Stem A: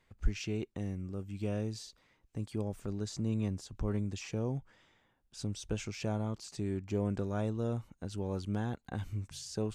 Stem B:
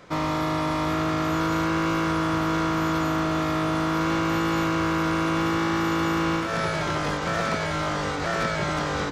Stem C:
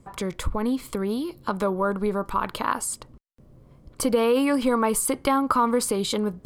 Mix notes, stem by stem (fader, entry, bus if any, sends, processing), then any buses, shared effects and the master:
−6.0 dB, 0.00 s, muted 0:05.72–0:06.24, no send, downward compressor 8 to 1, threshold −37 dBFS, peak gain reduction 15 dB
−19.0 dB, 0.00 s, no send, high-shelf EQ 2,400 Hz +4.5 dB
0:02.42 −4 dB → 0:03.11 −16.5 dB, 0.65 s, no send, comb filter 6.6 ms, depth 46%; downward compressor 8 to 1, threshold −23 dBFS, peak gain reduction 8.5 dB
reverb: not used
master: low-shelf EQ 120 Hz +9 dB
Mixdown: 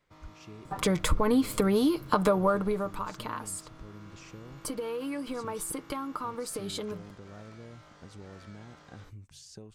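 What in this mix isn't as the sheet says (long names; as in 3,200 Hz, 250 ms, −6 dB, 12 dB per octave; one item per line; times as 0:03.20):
stem B −19.0 dB → −30.0 dB
stem C −4.0 dB → +4.0 dB
master: missing low-shelf EQ 120 Hz +9 dB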